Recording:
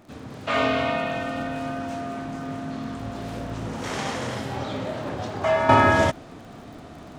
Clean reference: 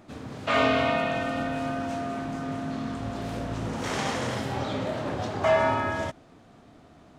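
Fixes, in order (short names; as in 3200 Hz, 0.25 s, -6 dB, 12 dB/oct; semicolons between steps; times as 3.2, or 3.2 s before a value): de-click; gain 0 dB, from 5.69 s -11 dB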